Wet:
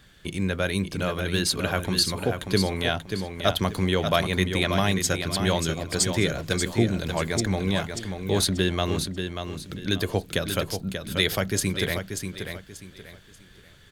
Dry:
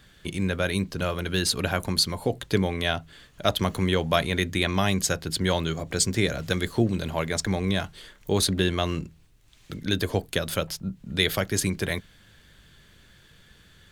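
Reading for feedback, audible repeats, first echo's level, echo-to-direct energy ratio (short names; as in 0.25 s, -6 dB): 29%, 3, -7.0 dB, -6.5 dB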